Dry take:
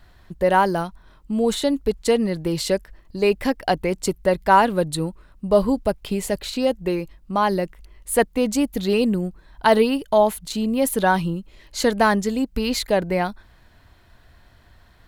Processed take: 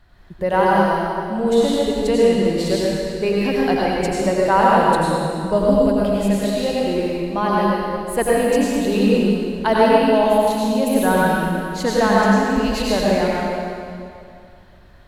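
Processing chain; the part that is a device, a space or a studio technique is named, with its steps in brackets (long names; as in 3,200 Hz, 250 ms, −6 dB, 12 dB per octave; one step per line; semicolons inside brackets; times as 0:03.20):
swimming-pool hall (convolution reverb RT60 2.4 s, pre-delay 81 ms, DRR −6 dB; high-shelf EQ 5,400 Hz −6 dB)
level −3 dB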